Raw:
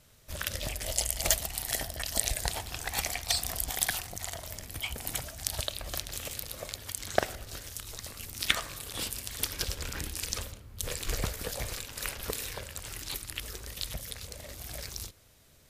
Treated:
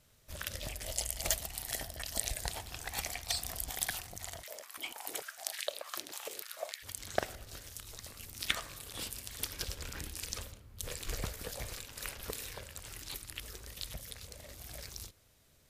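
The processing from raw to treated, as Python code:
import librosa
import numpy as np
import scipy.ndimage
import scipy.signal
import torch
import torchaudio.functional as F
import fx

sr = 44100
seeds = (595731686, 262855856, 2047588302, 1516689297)

y = fx.filter_held_highpass(x, sr, hz=6.7, low_hz=310.0, high_hz=1900.0, at=(4.42, 6.82), fade=0.02)
y = F.gain(torch.from_numpy(y), -6.0).numpy()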